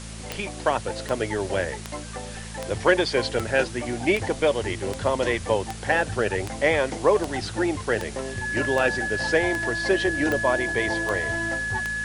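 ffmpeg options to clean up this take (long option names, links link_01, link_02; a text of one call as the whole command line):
ffmpeg -i in.wav -af "adeclick=threshold=4,bandreject=frequency=55.1:width_type=h:width=4,bandreject=frequency=110.2:width_type=h:width=4,bandreject=frequency=165.3:width_type=h:width=4,bandreject=frequency=220.4:width_type=h:width=4,bandreject=frequency=1700:width=30,afwtdn=0.01" out.wav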